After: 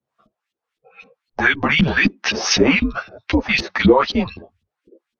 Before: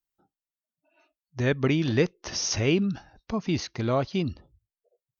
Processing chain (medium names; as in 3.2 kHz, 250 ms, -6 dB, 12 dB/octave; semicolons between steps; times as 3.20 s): frequency shift -150 Hz; LFO band-pass saw up 3.9 Hz 230–3500 Hz; loudness maximiser +31 dB; three-phase chorus; trim -1 dB